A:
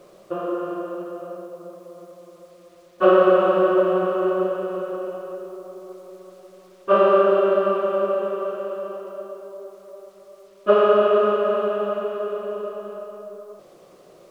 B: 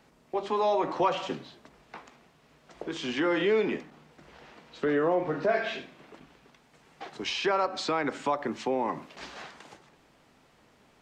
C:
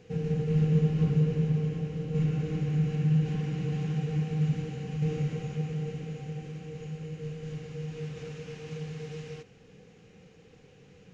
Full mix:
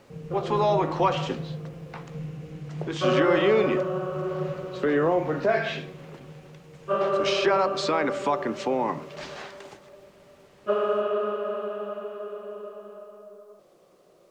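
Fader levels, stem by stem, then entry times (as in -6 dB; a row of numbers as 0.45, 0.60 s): -9.0, +3.0, -8.5 dB; 0.00, 0.00, 0.00 s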